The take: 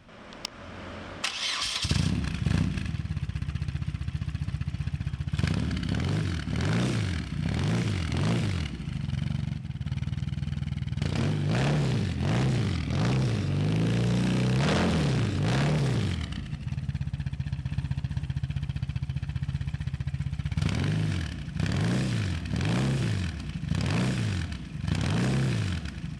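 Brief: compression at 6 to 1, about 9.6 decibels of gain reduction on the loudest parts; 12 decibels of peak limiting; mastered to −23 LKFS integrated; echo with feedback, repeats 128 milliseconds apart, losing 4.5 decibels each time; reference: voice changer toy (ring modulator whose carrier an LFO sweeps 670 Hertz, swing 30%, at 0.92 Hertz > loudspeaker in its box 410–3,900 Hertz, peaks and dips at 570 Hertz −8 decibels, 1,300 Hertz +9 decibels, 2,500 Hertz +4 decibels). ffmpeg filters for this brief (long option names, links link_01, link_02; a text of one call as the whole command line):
ffmpeg -i in.wav -af "acompressor=threshold=-31dB:ratio=6,alimiter=level_in=4.5dB:limit=-24dB:level=0:latency=1,volume=-4.5dB,aecho=1:1:128|256|384|512|640|768|896|1024|1152:0.596|0.357|0.214|0.129|0.0772|0.0463|0.0278|0.0167|0.01,aeval=exprs='val(0)*sin(2*PI*670*n/s+670*0.3/0.92*sin(2*PI*0.92*n/s))':channel_layout=same,highpass=410,equalizer=frequency=570:width_type=q:width=4:gain=-8,equalizer=frequency=1300:width_type=q:width=4:gain=9,equalizer=frequency=2500:width_type=q:width=4:gain=4,lowpass=frequency=3900:width=0.5412,lowpass=frequency=3900:width=1.3066,volume=16dB" out.wav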